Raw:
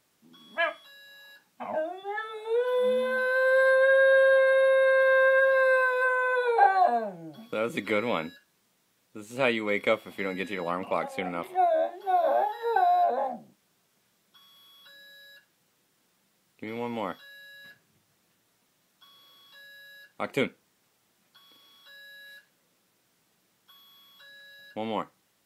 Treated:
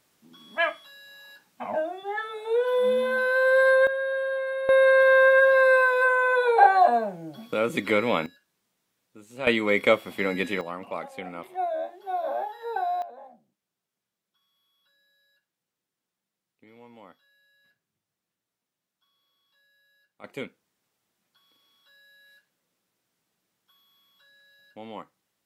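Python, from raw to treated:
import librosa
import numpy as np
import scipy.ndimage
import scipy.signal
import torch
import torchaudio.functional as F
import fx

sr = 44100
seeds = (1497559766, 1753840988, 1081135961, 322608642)

y = fx.gain(x, sr, db=fx.steps((0.0, 2.5), (3.87, -8.0), (4.69, 4.0), (8.26, -6.5), (9.47, 5.0), (10.61, -5.0), (13.02, -17.0), (20.24, -8.5)))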